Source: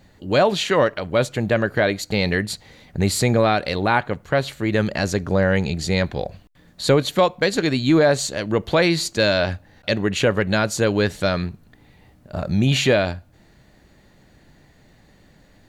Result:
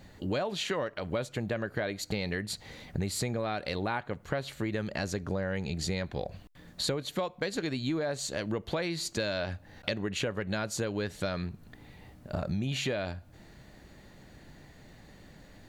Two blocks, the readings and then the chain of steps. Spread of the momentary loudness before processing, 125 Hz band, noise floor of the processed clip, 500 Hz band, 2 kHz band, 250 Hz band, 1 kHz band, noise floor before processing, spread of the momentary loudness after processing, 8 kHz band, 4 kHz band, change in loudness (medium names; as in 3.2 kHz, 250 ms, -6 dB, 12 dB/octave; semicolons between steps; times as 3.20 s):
9 LU, -12.5 dB, -55 dBFS, -14.0 dB, -13.5 dB, -12.5 dB, -14.5 dB, -54 dBFS, 8 LU, -9.5 dB, -11.0 dB, -13.5 dB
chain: compression 6:1, threshold -30 dBFS, peak gain reduction 18 dB